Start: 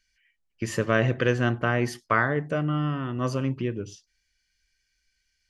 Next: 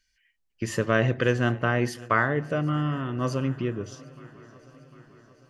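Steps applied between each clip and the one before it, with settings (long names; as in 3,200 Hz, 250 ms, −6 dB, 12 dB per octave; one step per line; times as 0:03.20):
notch filter 2,300 Hz, Q 21
feedback echo with a long and a short gap by turns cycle 751 ms, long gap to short 3 to 1, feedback 56%, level −22 dB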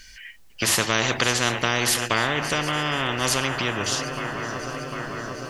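every bin compressed towards the loudest bin 4 to 1
level +5 dB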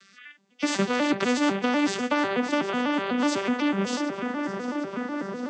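vocoder with an arpeggio as carrier major triad, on G3, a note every 124 ms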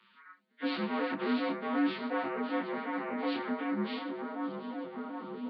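partials spread apart or drawn together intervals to 84%
multi-voice chorus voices 2, 0.44 Hz, delay 25 ms, depth 4.1 ms
level −4 dB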